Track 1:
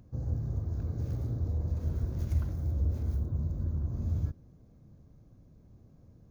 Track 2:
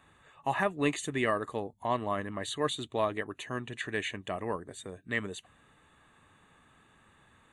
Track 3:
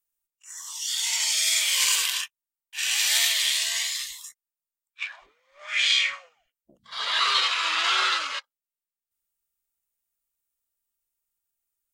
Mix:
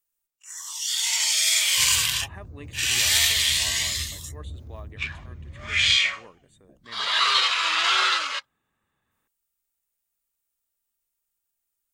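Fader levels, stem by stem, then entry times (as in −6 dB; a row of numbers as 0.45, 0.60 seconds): −8.5, −15.0, +2.0 decibels; 1.65, 1.75, 0.00 seconds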